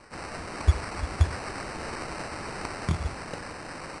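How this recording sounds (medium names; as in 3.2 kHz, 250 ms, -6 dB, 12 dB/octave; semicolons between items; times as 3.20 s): a quantiser's noise floor 8-bit, dither triangular; phasing stages 8, 1.6 Hz, lowest notch 530–4100 Hz; aliases and images of a low sample rate 3.4 kHz, jitter 0%; AAC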